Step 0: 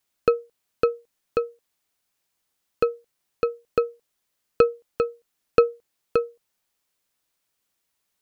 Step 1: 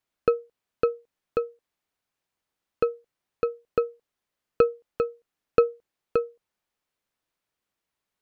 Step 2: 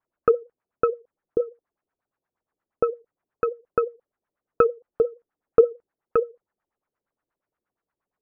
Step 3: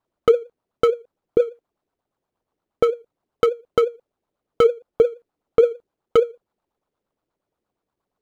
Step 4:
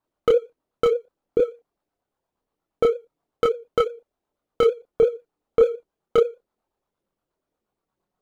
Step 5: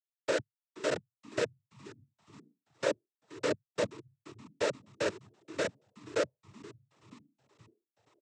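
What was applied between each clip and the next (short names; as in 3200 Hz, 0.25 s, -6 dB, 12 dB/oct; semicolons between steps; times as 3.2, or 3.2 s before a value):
high shelf 4100 Hz -11.5 dB; gain -2 dB
LFO low-pass sine 8.5 Hz 350–1700 Hz
median filter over 25 samples; limiter -14 dBFS, peak gain reduction 8.5 dB; gain +8 dB
chorus voices 6, 0.26 Hz, delay 27 ms, depth 3.9 ms; gain +1.5 dB
Schmitt trigger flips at -18.5 dBFS; frequency-shifting echo 0.476 s, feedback 55%, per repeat -110 Hz, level -19 dB; noise vocoder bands 12; gain -2.5 dB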